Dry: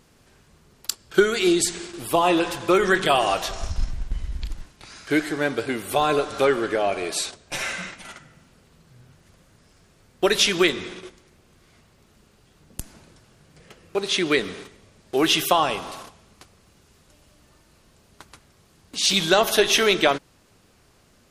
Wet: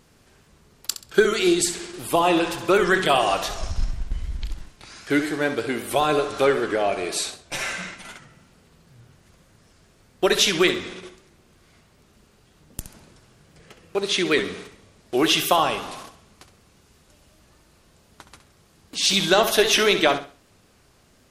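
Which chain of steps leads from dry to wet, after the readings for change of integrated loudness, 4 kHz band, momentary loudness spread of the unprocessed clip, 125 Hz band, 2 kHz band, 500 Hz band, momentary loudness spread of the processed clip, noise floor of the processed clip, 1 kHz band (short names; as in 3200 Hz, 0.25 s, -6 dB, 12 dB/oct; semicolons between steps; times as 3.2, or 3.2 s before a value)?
+0.5 dB, +0.5 dB, 18 LU, +0.5 dB, +0.5 dB, +0.5 dB, 18 LU, -58 dBFS, 0.0 dB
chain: on a send: flutter echo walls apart 11.3 m, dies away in 0.36 s; on the sum: record warp 78 rpm, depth 100 cents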